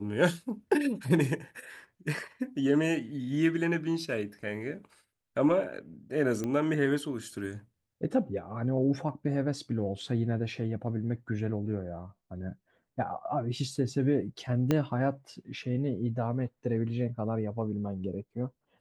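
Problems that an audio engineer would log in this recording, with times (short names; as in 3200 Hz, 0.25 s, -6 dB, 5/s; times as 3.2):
6.44 pop -21 dBFS
14.71 pop -13 dBFS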